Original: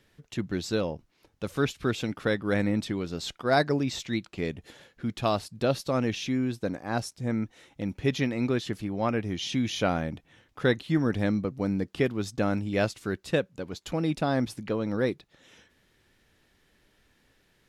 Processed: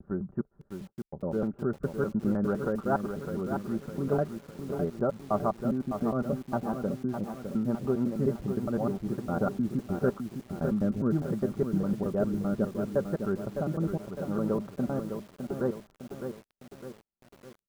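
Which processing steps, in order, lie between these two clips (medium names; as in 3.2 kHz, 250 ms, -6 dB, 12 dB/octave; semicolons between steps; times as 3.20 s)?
slices played last to first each 102 ms, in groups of 7; Chebyshev low-pass 1.4 kHz, order 5; gate -56 dBFS, range -30 dB; comb 5.1 ms, depth 48%; rotary cabinet horn 6.7 Hz, later 0.75 Hz, at 9.91 s; bit-crushed delay 607 ms, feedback 55%, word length 8-bit, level -7 dB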